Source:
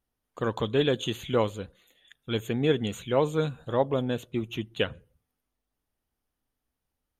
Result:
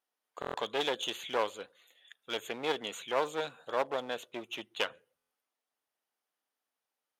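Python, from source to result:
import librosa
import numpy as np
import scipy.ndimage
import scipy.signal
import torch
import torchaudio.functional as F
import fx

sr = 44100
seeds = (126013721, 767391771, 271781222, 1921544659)

y = fx.high_shelf(x, sr, hz=10000.0, db=-6.0)
y = fx.clip_asym(y, sr, top_db=-33.0, bottom_db=-14.0)
y = scipy.signal.sosfilt(scipy.signal.butter(2, 570.0, 'highpass', fs=sr, output='sos'), y)
y = fx.buffer_glitch(y, sr, at_s=(0.4, 5.17), block=1024, repeats=5)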